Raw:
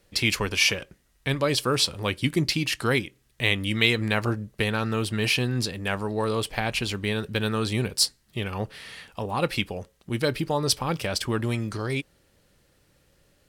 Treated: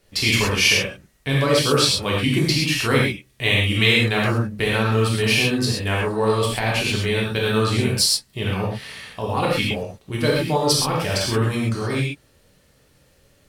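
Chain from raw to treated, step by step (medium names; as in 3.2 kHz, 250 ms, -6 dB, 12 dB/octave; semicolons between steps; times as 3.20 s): gated-style reverb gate 150 ms flat, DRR -4.5 dB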